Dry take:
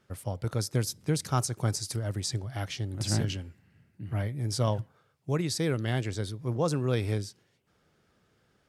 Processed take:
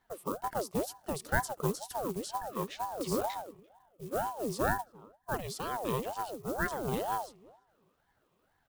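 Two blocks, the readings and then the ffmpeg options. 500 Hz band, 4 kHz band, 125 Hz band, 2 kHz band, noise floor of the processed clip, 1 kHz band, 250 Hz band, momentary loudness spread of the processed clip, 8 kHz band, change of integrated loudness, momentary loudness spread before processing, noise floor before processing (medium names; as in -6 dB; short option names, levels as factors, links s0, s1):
-1.5 dB, -9.5 dB, -13.5 dB, +3.0 dB, -74 dBFS, +5.5 dB, -5.0 dB, 7 LU, -7.5 dB, -4.0 dB, 7 LU, -70 dBFS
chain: -filter_complex "[0:a]firequalizer=gain_entry='entry(110,0);entry(210,-13);entry(460,-8);entry(830,9);entry(1600,-26);entry(2200,-9);entry(5100,-22)':delay=0.05:min_phase=1,acrusher=bits=8:mode=log:mix=0:aa=0.000001,crystalizer=i=5.5:c=0,asplit=2[s0][s1];[s1]adelay=343,lowpass=f=1800:p=1,volume=0.0631,asplit=2[s2][s3];[s3]adelay=343,lowpass=f=1800:p=1,volume=0.19[s4];[s2][s4]amix=inputs=2:normalize=0[s5];[s0][s5]amix=inputs=2:normalize=0,aeval=exprs='val(0)*sin(2*PI*580*n/s+580*0.55/2.1*sin(2*PI*2.1*n/s))':c=same"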